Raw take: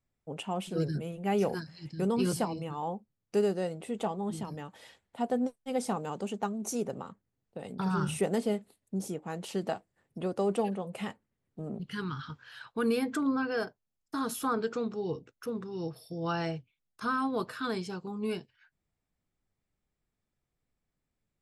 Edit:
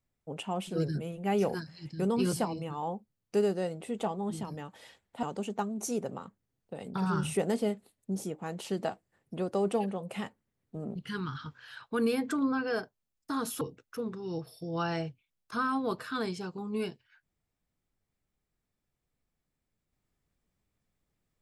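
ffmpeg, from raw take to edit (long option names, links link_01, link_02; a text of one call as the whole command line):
ffmpeg -i in.wav -filter_complex "[0:a]asplit=3[link_01][link_02][link_03];[link_01]atrim=end=5.232[link_04];[link_02]atrim=start=6.068:end=14.452[link_05];[link_03]atrim=start=15.098[link_06];[link_04][link_05]acrossfade=duration=0.004:curve1=hsin:curve2=hsin[link_07];[link_07][link_06]acrossfade=duration=0.004:curve1=hsin:curve2=hsin" out.wav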